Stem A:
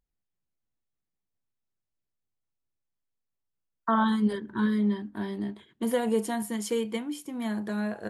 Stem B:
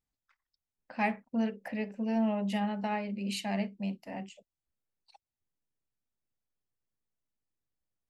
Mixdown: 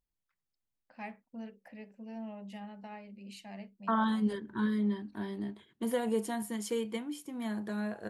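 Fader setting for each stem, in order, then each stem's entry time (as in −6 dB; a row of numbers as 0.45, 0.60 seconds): −5.0, −13.5 decibels; 0.00, 0.00 seconds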